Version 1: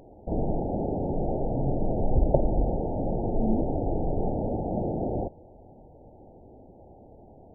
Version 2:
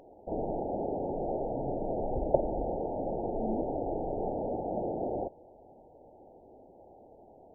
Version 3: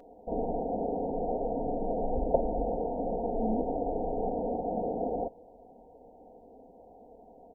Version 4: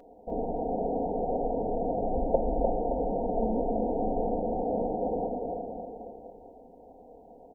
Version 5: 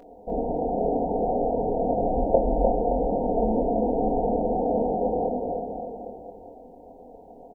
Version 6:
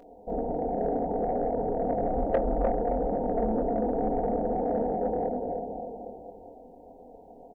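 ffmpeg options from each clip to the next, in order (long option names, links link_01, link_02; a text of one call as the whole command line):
ffmpeg -i in.wav -af "bass=frequency=250:gain=-13,treble=frequency=4000:gain=-4,volume=-1dB" out.wav
ffmpeg -i in.wav -af "aecho=1:1:4.2:0.67" out.wav
ffmpeg -i in.wav -af "aecho=1:1:300|570|813|1032|1229:0.631|0.398|0.251|0.158|0.1" out.wav
ffmpeg -i in.wav -filter_complex "[0:a]asplit=2[link_01][link_02];[link_02]adelay=24,volume=-5dB[link_03];[link_01][link_03]amix=inputs=2:normalize=0,volume=4dB" out.wav
ffmpeg -i in.wav -af "asoftclip=type=tanh:threshold=-13dB,volume=-3dB" out.wav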